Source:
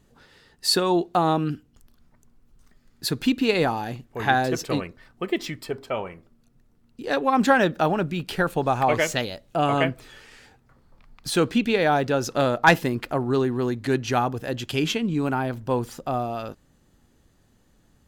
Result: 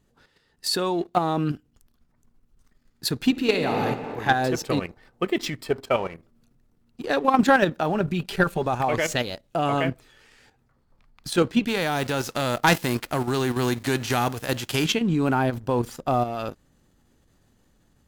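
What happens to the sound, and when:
3.31–3.8 reverb throw, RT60 2 s, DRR 2 dB
7.94–8.66 comb 5.1 ms, depth 64%
11.67–14.84 spectral whitening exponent 0.6
whole clip: level quantiser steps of 9 dB; sample leveller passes 1; vocal rider 2 s

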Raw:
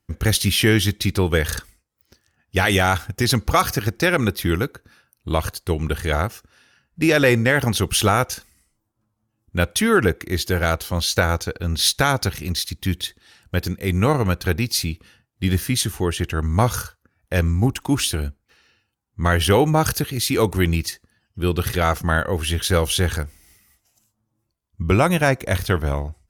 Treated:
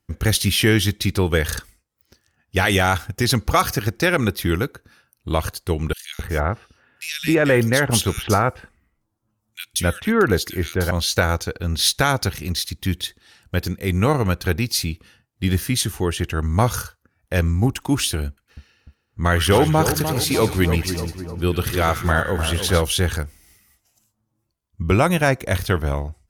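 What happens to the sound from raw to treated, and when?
5.93–10.91 bands offset in time highs, lows 0.26 s, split 2500 Hz
18.27–22.82 split-band echo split 1400 Hz, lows 0.299 s, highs 0.103 s, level -8 dB

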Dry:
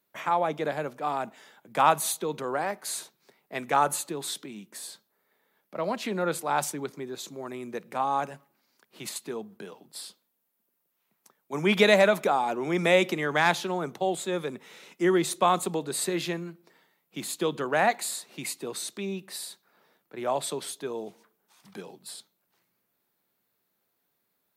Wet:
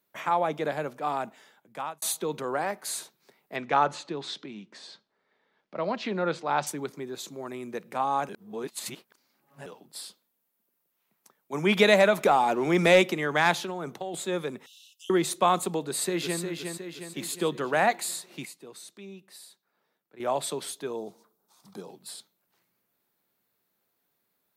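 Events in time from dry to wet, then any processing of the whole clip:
1.18–2.02 fade out
3.56–6.67 LPF 5300 Hz 24 dB/oct
8.29–9.66 reverse
12.18–13.02 sample leveller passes 1
13.62–14.14 compressor 10:1, threshold -29 dBFS
14.66–15.1 Chebyshev high-pass 2700 Hz, order 10
15.85–16.41 echo throw 0.36 s, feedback 55%, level -5.5 dB
18.45–20.2 gain -11 dB
20.96–21.89 band shelf 2200 Hz -10 dB 1.2 oct

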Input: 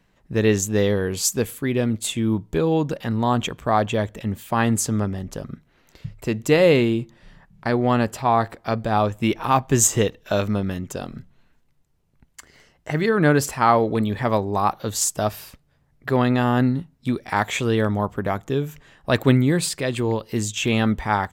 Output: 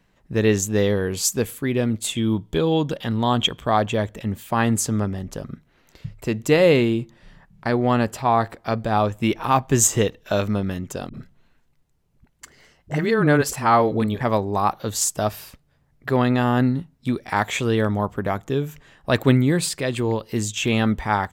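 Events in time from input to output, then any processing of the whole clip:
2.15–3.77 bell 3300 Hz +12 dB 0.25 oct
11.09–14.21 dispersion highs, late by 48 ms, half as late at 320 Hz

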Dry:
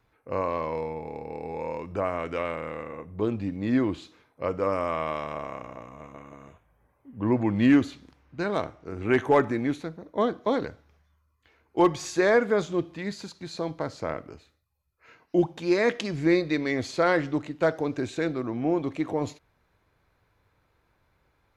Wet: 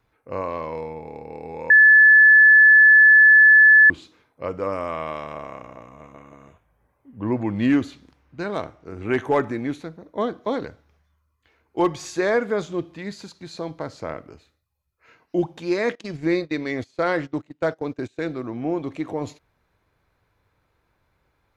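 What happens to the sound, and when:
1.7–3.9 bleep 1730 Hz -8 dBFS
15.95–18.2 gate -32 dBFS, range -21 dB

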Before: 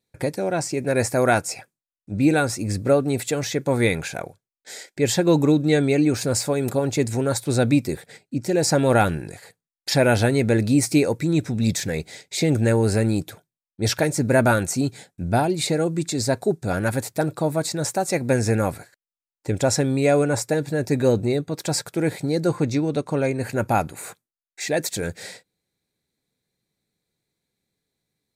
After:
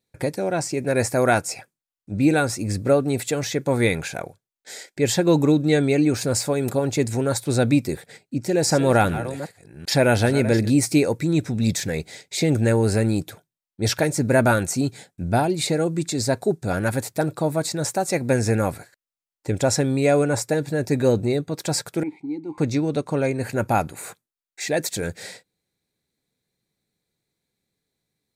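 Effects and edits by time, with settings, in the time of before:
7.94–10.7 reverse delay 0.383 s, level -12.5 dB
22.03–22.58 vowel filter u

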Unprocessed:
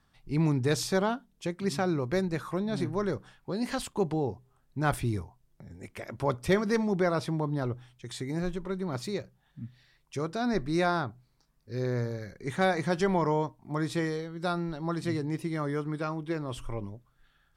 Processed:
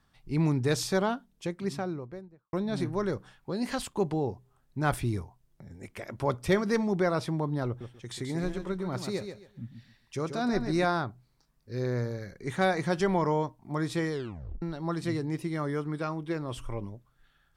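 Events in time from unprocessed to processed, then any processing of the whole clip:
1.3–2.53 studio fade out
7.67–10.85 feedback echo 0.135 s, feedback 23%, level -7.5 dB
14.12 tape stop 0.50 s

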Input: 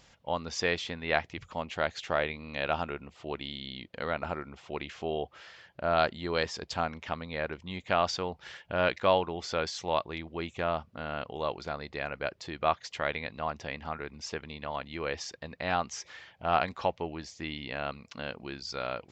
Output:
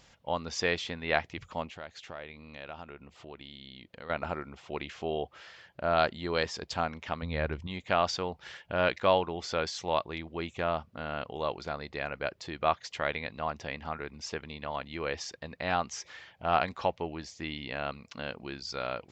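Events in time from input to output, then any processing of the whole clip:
1.67–4.1 compressor 2:1, threshold -49 dBFS
7.22–7.67 bell 68 Hz +12.5 dB 2.5 oct

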